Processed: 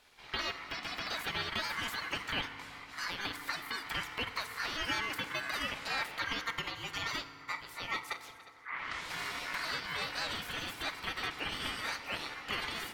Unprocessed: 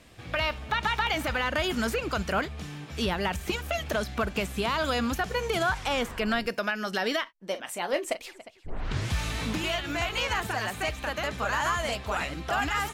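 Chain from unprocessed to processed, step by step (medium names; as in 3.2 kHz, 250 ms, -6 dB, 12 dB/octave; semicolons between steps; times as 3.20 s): graphic EQ 125/250/500/1000/2000/4000/8000 Hz -9/+3/+8/-5/-5/-5/-7 dB; spectral gate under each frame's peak -10 dB weak; ring modulator 1.6 kHz; peaking EQ 2.8 kHz +3.5 dB 1.8 oct; on a send: reverse echo 100 ms -22 dB; on the sum: FDN reverb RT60 3 s, high-frequency decay 0.45×, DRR 10 dB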